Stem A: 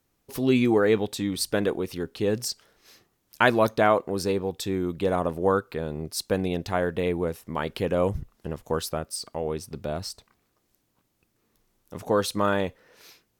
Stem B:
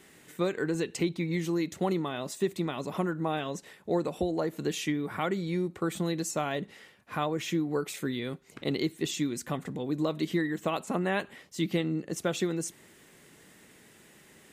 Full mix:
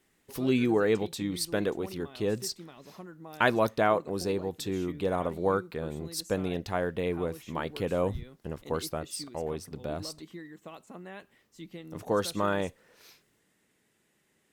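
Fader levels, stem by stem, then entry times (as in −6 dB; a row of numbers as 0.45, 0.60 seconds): −4.5, −15.5 decibels; 0.00, 0.00 seconds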